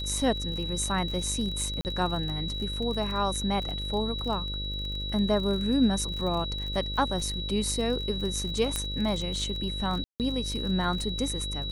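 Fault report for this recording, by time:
buzz 50 Hz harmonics 12 -35 dBFS
crackle 37 per s -33 dBFS
whine 3.9 kHz -34 dBFS
1.81–1.85 s: dropout 39 ms
8.76 s: pop -14 dBFS
10.04–10.20 s: dropout 158 ms

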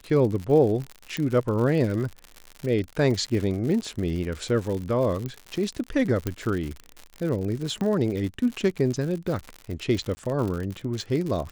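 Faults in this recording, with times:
crackle 94 per s -30 dBFS
1.17 s: pop -14 dBFS
5.26 s: pop -19 dBFS
6.27 s: pop -12 dBFS
7.81 s: pop -18 dBFS
10.15–10.17 s: dropout 20 ms

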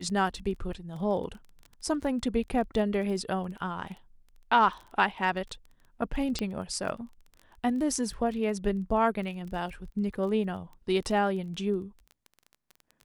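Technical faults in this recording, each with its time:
crackle 19 per s -38 dBFS
6.39 s: pop -17 dBFS

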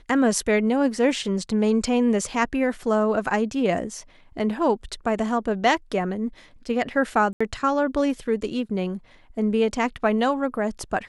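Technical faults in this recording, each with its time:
7.33–7.41 s: dropout 75 ms

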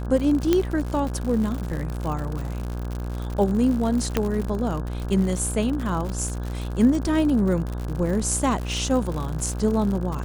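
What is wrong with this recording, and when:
buzz 60 Hz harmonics 28 -29 dBFS
crackle 100 per s -28 dBFS
0.53 s: pop -7 dBFS
4.17 s: pop -7 dBFS

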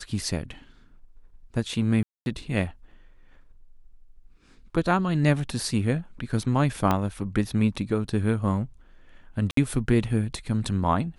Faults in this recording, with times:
2.03–2.26 s: dropout 231 ms
6.91 s: pop -10 dBFS
9.51–9.57 s: dropout 63 ms

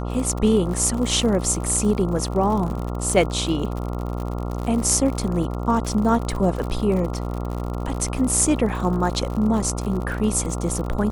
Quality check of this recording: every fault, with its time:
buzz 60 Hz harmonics 23 -27 dBFS
crackle 69 per s -28 dBFS

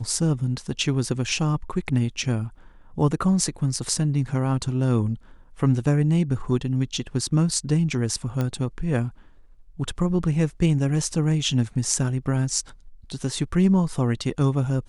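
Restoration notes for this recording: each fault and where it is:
8.41 s: pop -14 dBFS

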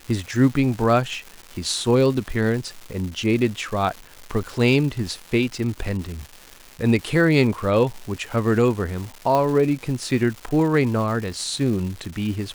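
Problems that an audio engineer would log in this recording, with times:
crackle 410 per s -30 dBFS
9.35 s: pop -10 dBFS

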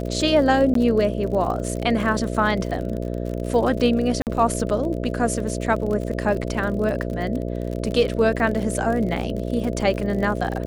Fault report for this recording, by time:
buzz 60 Hz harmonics 11 -27 dBFS
crackle 52 per s -28 dBFS
0.74–0.75 s: dropout 13 ms
4.22–4.27 s: dropout 48 ms

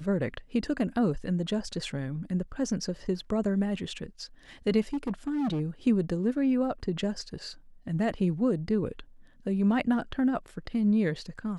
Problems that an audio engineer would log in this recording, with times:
4.93–5.61 s: clipped -26 dBFS

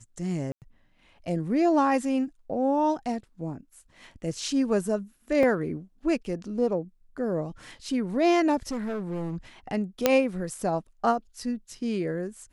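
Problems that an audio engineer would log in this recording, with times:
0.52–0.62 s: dropout 98 ms
5.43 s: dropout 2.4 ms
8.69–9.37 s: clipped -27.5 dBFS
10.06 s: pop -5 dBFS

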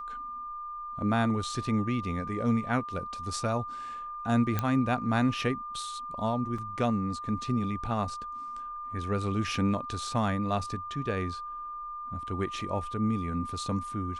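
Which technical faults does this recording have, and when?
whine 1.2 kHz -36 dBFS
4.59 s: pop -14 dBFS
6.58 s: dropout 4.3 ms

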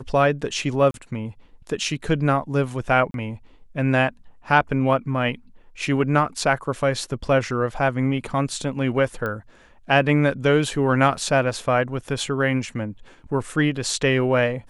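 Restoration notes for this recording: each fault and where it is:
0.91–0.94 s: dropout 32 ms
3.11–3.14 s: dropout 32 ms
9.26 s: pop -16 dBFS

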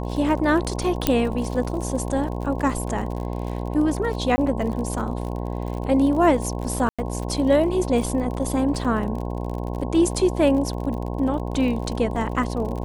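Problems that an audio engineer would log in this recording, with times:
buzz 60 Hz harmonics 18 -28 dBFS
crackle 42 per s -30 dBFS
1.07 s: pop -3 dBFS
4.36–4.38 s: dropout 20 ms
6.89–6.99 s: dropout 96 ms
8.84–8.85 s: dropout 5 ms

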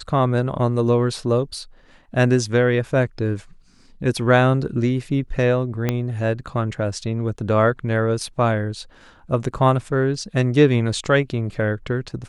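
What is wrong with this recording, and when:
5.89 s: pop -7 dBFS

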